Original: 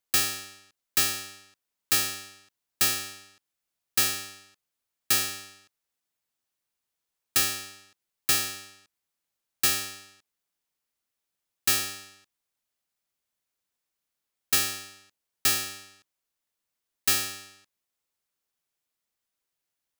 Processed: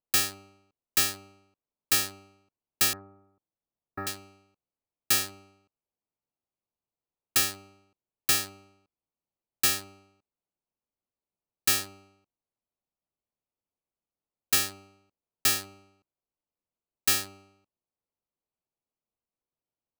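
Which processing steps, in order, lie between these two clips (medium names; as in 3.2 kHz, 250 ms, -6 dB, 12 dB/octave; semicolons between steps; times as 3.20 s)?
local Wiener filter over 25 samples; 2.93–4.07 s: inverse Chebyshev low-pass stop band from 2.9 kHz, stop band 40 dB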